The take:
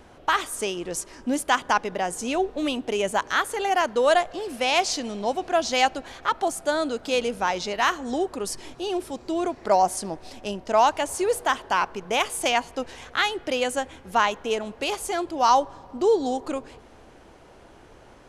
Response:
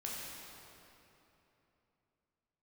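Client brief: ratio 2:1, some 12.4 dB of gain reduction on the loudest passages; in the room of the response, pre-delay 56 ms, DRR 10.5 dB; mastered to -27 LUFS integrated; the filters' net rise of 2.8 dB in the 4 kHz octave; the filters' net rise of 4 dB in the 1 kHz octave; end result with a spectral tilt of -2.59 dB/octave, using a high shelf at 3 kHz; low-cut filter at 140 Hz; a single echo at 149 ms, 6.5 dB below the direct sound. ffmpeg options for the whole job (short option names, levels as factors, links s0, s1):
-filter_complex "[0:a]highpass=140,equalizer=f=1000:t=o:g=5.5,highshelf=f=3000:g=-6.5,equalizer=f=4000:t=o:g=8.5,acompressor=threshold=0.0224:ratio=2,aecho=1:1:149:0.473,asplit=2[s0][s1];[1:a]atrim=start_sample=2205,adelay=56[s2];[s1][s2]afir=irnorm=-1:irlink=0,volume=0.266[s3];[s0][s3]amix=inputs=2:normalize=0,volume=1.41"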